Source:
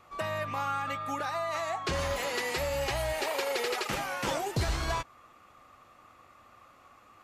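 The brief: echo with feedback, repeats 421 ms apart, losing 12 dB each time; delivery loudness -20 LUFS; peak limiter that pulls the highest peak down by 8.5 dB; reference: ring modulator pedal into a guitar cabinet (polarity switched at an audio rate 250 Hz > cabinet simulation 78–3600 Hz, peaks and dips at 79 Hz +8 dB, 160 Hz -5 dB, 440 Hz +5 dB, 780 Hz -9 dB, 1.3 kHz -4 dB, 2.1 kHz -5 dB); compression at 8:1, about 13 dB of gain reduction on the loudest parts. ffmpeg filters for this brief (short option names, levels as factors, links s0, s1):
-af "acompressor=threshold=0.0112:ratio=8,alimiter=level_in=3.98:limit=0.0631:level=0:latency=1,volume=0.251,aecho=1:1:421|842|1263:0.251|0.0628|0.0157,aeval=exprs='val(0)*sgn(sin(2*PI*250*n/s))':c=same,highpass=78,equalizer=f=79:t=q:w=4:g=8,equalizer=f=160:t=q:w=4:g=-5,equalizer=f=440:t=q:w=4:g=5,equalizer=f=780:t=q:w=4:g=-9,equalizer=f=1300:t=q:w=4:g=-4,equalizer=f=2100:t=q:w=4:g=-5,lowpass=f=3600:w=0.5412,lowpass=f=3600:w=1.3066,volume=21.1"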